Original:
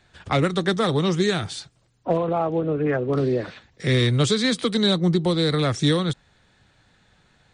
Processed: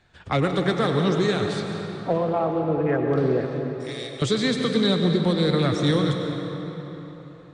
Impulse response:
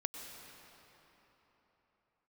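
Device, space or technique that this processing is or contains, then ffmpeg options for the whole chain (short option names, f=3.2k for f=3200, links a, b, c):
swimming-pool hall: -filter_complex "[0:a]asettb=1/sr,asplit=3[a][b][c];[a]atrim=end=3.454[d];[b]atrim=start=3.45:end=4.22,asetpts=PTS-STARTPTS,afade=t=in:d=0.004:c=qsin,afade=t=out:st=0.766:d=0.004:c=qsin,aderivative[e];[c]atrim=start=4.216[f];[d][e]acrossfade=d=0.004:c1=hsin:c2=qsin[g];[g][f]acrossfade=d=0.004:c1=qsin:c2=hsin[h];[1:a]atrim=start_sample=2205[i];[h][i]afir=irnorm=-1:irlink=0,highshelf=f=5.5k:g=-8"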